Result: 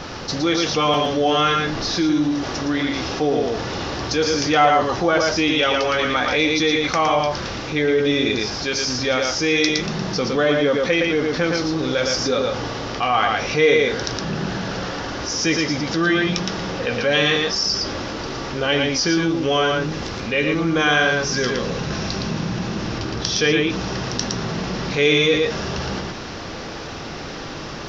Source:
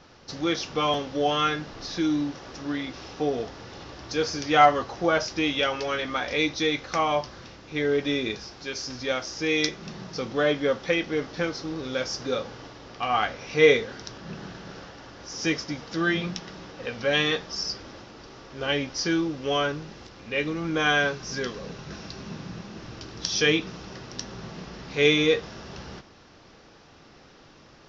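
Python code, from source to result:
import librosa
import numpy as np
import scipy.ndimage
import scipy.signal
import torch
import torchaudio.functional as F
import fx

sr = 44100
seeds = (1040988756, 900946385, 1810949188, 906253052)

p1 = fx.high_shelf(x, sr, hz=3800.0, db=-8.5, at=(22.98, 23.7))
p2 = p1 + fx.echo_single(p1, sr, ms=114, db=-4.5, dry=0)
y = fx.env_flatten(p2, sr, amount_pct=50)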